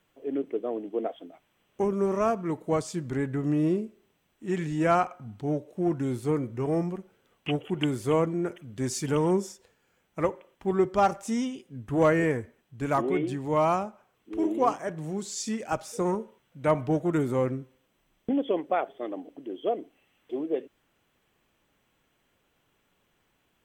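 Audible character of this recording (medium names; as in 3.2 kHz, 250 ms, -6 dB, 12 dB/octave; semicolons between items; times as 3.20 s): noise floor -72 dBFS; spectral tilt -5.0 dB/octave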